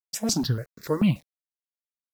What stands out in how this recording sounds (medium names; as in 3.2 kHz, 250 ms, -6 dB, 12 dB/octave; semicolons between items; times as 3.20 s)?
a quantiser's noise floor 10-bit, dither none; notches that jump at a steady rate 6.9 Hz 370–3000 Hz